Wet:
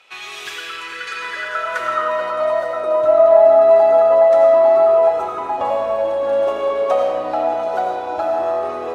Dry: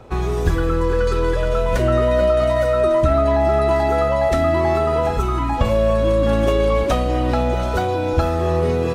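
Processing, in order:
high-shelf EQ 7,800 Hz +7 dB
convolution reverb RT60 1.7 s, pre-delay 45 ms, DRR 0 dB
band-pass filter sweep 2,700 Hz → 710 Hz, 0:00.75–0:02.81
spectral tilt +3 dB per octave
level +5 dB

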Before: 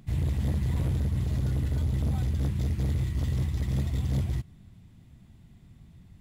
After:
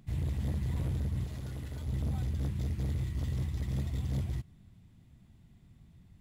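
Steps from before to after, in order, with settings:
0:01.26–0:01.87: low-shelf EQ 380 Hz −7.5 dB
level −5.5 dB

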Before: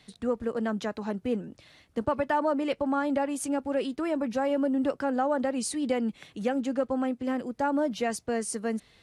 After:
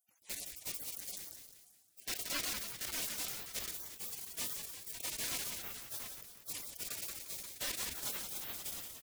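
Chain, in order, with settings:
Butterworth high-pass 850 Hz 96 dB per octave
in parallel at −5.5 dB: log-companded quantiser 2 bits
on the sum: flanger 1.4 Hz, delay 2.5 ms, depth 6.7 ms, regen −72%
gate on every frequency bin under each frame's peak −30 dB weak
on a send: echo with shifted repeats 178 ms, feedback 57%, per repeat −74 Hz, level −14 dB
on the sum: level that may fall only so fast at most 36 dB per second
level +9.5 dB

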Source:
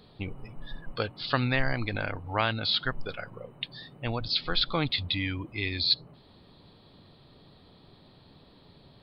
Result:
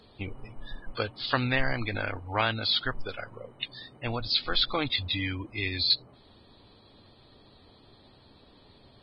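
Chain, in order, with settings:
parametric band 160 Hz −15 dB 0.24 octaves
Ogg Vorbis 16 kbit/s 22,050 Hz

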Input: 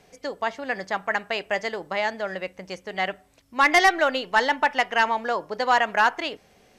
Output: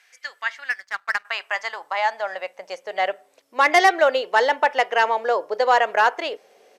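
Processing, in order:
downsampling to 32,000 Hz
high-pass filter sweep 1,700 Hz → 470 Hz, 0:00.59–0:03.33
0:00.70–0:01.25: power curve on the samples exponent 1.4

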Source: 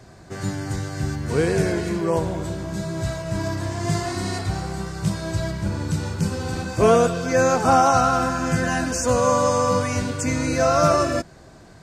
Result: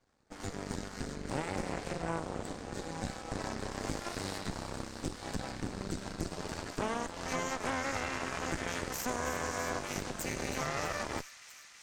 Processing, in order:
elliptic low-pass filter 9,100 Hz
downward compressor 6 to 1, threshold −24 dBFS, peak gain reduction 11.5 dB
harmonic generator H 3 −12 dB, 4 −7 dB, 5 −31 dB, 7 −24 dB, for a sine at −15 dBFS
delay with a high-pass on its return 324 ms, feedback 80%, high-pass 2,400 Hz, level −12 dB
level −9 dB

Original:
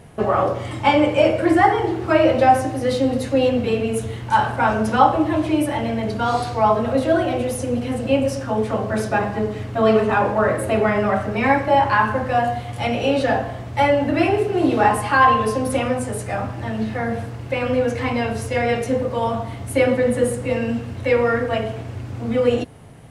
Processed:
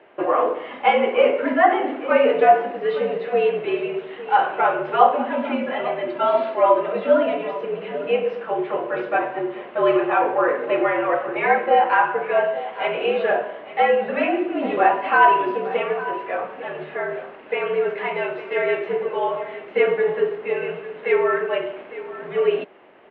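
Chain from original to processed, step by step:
0:05.37–0:07.54: comb filter 2.9 ms, depth 55%
single-tap delay 855 ms −15 dB
single-sideband voice off tune −66 Hz 410–3,100 Hz

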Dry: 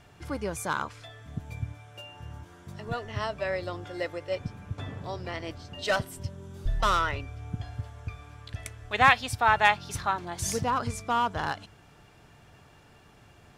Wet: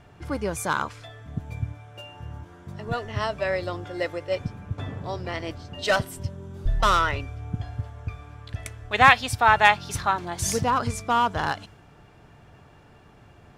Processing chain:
one half of a high-frequency compander decoder only
level +4.5 dB

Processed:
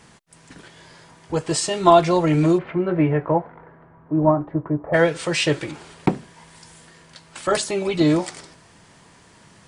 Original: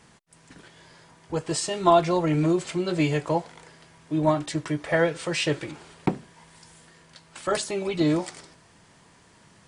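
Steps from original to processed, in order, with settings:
0:02.57–0:04.93: low-pass filter 2,200 Hz → 1,000 Hz 24 dB per octave
level +5 dB

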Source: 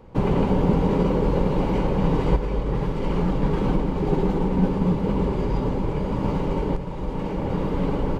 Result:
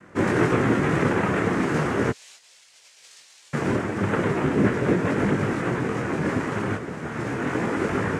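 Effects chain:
0:02.09–0:03.53: flat-topped band-pass 3,500 Hz, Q 2.2
cochlear-implant simulation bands 3
micro pitch shift up and down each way 13 cents
level +4 dB

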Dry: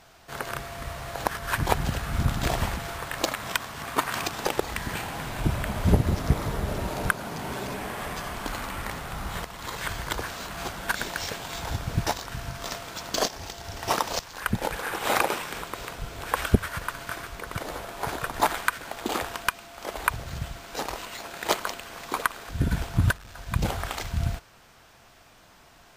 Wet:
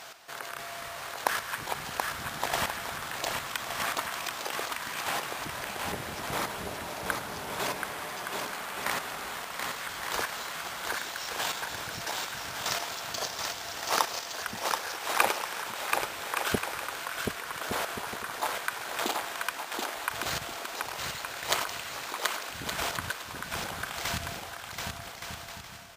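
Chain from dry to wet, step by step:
high-pass filter 830 Hz 6 dB per octave
in parallel at 0 dB: compressor whose output falls as the input rises −42 dBFS, ratio −1
on the sum: square-wave tremolo 0.79 Hz, depth 65%, duty 10%
bouncing-ball delay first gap 730 ms, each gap 0.6×, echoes 5
level +2 dB

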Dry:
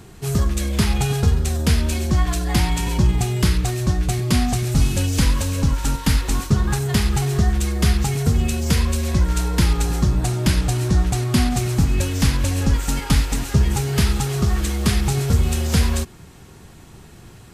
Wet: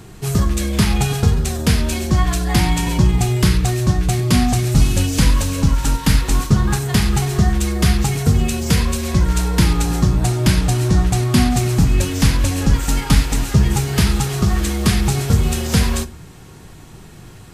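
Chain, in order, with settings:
convolution reverb RT60 0.35 s, pre-delay 6 ms, DRR 12.5 dB
level +3 dB

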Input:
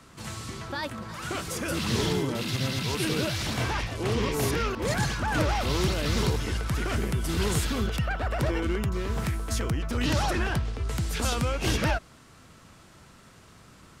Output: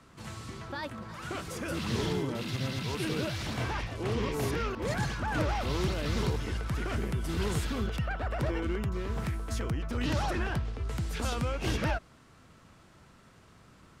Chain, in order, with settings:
high-shelf EQ 3,900 Hz −6.5 dB
level −4 dB

